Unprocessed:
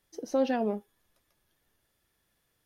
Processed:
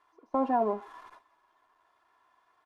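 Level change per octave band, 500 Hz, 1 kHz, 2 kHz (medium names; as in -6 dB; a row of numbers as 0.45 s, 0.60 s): -1.5 dB, +7.5 dB, -5.0 dB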